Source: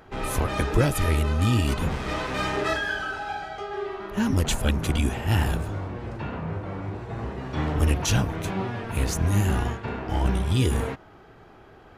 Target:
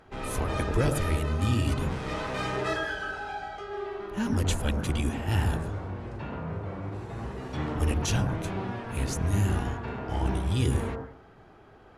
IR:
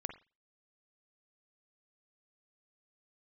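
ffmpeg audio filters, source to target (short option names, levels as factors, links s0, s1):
-filter_complex "[0:a]asettb=1/sr,asplit=3[s0][s1][s2];[s0]atrim=end=6.924[s3];[s1]atrim=start=6.92:end=7.57,asetpts=PTS-STARTPTS,afade=t=in:d=0.004:c=qsin,afade=t=out:st=0.646:d=0.004:c=qsin,highshelf=f=6100:g=11.5[s4];[s2]atrim=start=7.566[s5];[s3][s4]acrossfade=d=0.004:c1=hsin:c2=qsin[s6];[s6][s5]acrossfade=d=0.004:c1=qsin:c2=hsin[s7];[1:a]atrim=start_sample=2205,asetrate=22050,aresample=44100[s8];[s7][s8]afir=irnorm=-1:irlink=0,volume=0.501"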